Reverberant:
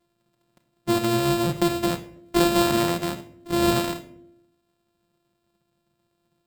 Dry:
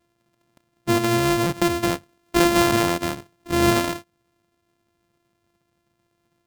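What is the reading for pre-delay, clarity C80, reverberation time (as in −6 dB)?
6 ms, 16.5 dB, 0.70 s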